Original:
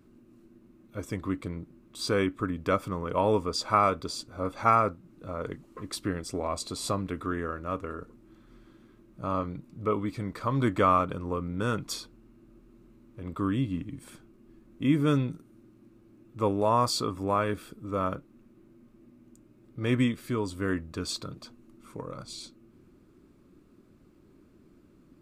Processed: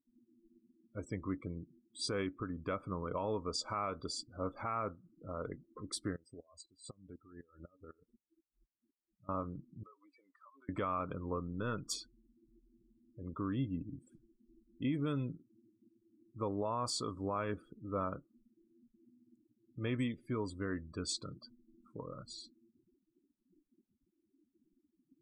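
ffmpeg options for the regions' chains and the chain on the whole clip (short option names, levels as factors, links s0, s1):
-filter_complex "[0:a]asettb=1/sr,asplit=3[s0][s1][s2];[s0]atrim=end=6.164[s3];[s1]atrim=start=6.16:end=9.29,asetpts=PTS-STARTPTS,afade=t=in:d=0.004:c=qsin,afade=t=out:st=3.126:d=0.004:c=qsin,acompressor=threshold=0.0178:ratio=20:attack=3.2:release=140:knee=1:detection=peak,aeval=exprs='val(0)*pow(10,-19*if(lt(mod(-4*n/s,1),2*abs(-4)/1000),1-mod(-4*n/s,1)/(2*abs(-4)/1000),(mod(-4*n/s,1)-2*abs(-4)/1000)/(1-2*abs(-4)/1000))/20)':c=same[s4];[s2]atrim=start=9.286[s5];[s3][s4]acrossfade=d=0.004:c1=hsin:c2=qsin[s6];[s6][s5]acrossfade=d=0.004:c1=qsin:c2=hsin,asettb=1/sr,asplit=3[s7][s8][s9];[s7]atrim=end=9.834[s10];[s8]atrim=start=9.83:end=10.69,asetpts=PTS-STARTPTS,afade=t=in:d=0.004:c=qsin,afade=t=out:st=0.856:d=0.004:c=qsin,aeval=exprs='if(lt(val(0),0),0.708*val(0),val(0))':c=same,highpass=710,acompressor=threshold=0.00447:ratio=10:attack=3.2:release=140:knee=1:detection=peak[s11];[s9]atrim=start=10.686[s12];[s10][s11]acrossfade=d=0.004:c1=hsin:c2=qsin[s13];[s13][s12]acrossfade=d=0.004:c1=qsin:c2=hsin,asettb=1/sr,asplit=3[s14][s15][s16];[s14]atrim=end=11.404[s17];[s15]atrim=start=11.4:end=11.86,asetpts=PTS-STARTPTS,afade=t=in:d=0.004:c=qsin,afade=t=out:st=0.456:d=0.004:c=qsin,aeval=exprs='if(lt(val(0),0),0.708*val(0),val(0))':c=same,highshelf=f=8800:g=-11.5[s18];[s16]atrim=start=11.856[s19];[s17][s18]acrossfade=d=0.004:c1=hsin:c2=qsin[s20];[s20][s19]acrossfade=d=0.004:c1=qsin:c2=hsin,afftdn=nr=34:nf=-42,equalizer=f=7700:t=o:w=1:g=6,alimiter=limit=0.1:level=0:latency=1:release=169,volume=0.473"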